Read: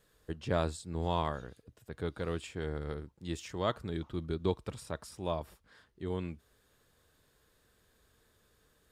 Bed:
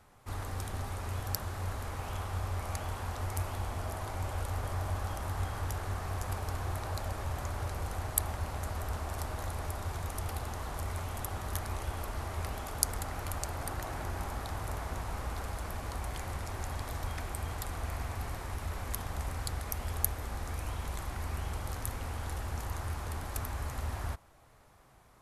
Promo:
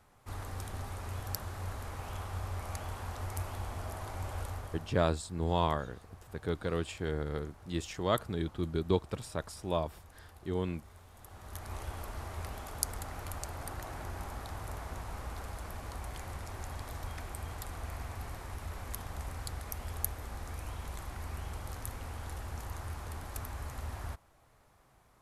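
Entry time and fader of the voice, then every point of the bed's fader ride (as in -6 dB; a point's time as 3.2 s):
4.45 s, +2.5 dB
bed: 4.45 s -3 dB
5.16 s -18.5 dB
11.11 s -18.5 dB
11.76 s -4 dB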